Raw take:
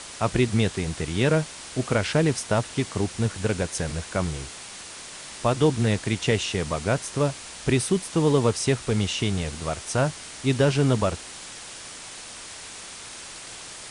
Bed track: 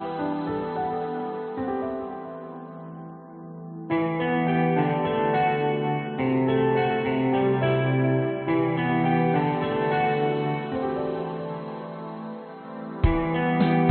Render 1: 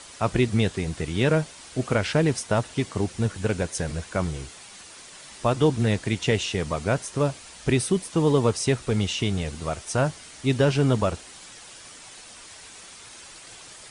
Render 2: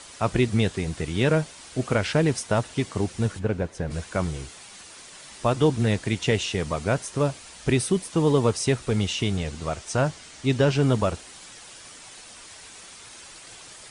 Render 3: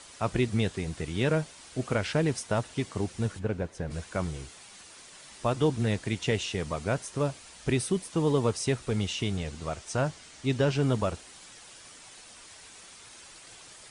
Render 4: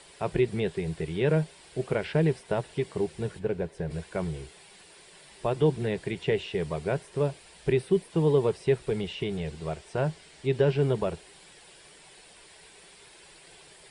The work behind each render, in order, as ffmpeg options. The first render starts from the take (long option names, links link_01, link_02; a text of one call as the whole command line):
ffmpeg -i in.wav -af "afftdn=noise_reduction=7:noise_floor=-40" out.wav
ffmpeg -i in.wav -filter_complex "[0:a]asplit=3[link_01][link_02][link_03];[link_01]afade=type=out:start_time=3.38:duration=0.02[link_04];[link_02]lowpass=frequency=1200:poles=1,afade=type=in:start_time=3.38:duration=0.02,afade=type=out:start_time=3.9:duration=0.02[link_05];[link_03]afade=type=in:start_time=3.9:duration=0.02[link_06];[link_04][link_05][link_06]amix=inputs=3:normalize=0,asettb=1/sr,asplit=3[link_07][link_08][link_09];[link_07]atrim=end=9.374[link_10];[link_08]atrim=start=9.37:end=10.82,asetpts=PTS-STARTPTS,afade=type=in:duration=0.004:curve=qsin,afade=type=out:start_time=1.446:duration=0.004:curve=qsin,lowpass=frequency=8800:width=0.5412,lowpass=frequency=8800:width=1.3066[link_11];[link_09]atrim=start=10.816[link_12];[link_10][link_11]acrossfade=duration=0.004:curve1=hsin:curve2=qsin[link_13];[link_13][link_12]acrossfade=duration=0.004:curve1=qsin:curve2=hsin" out.wav
ffmpeg -i in.wav -af "volume=-5dB" out.wav
ffmpeg -i in.wav -filter_complex "[0:a]acrossover=split=3200[link_01][link_02];[link_02]acompressor=threshold=-49dB:ratio=4:attack=1:release=60[link_03];[link_01][link_03]amix=inputs=2:normalize=0,equalizer=frequency=100:width_type=o:width=0.33:gain=-12,equalizer=frequency=160:width_type=o:width=0.33:gain=6,equalizer=frequency=250:width_type=o:width=0.33:gain=-10,equalizer=frequency=400:width_type=o:width=0.33:gain=8,equalizer=frequency=1250:width_type=o:width=0.33:gain=-8,equalizer=frequency=6300:width_type=o:width=0.33:gain=-10" out.wav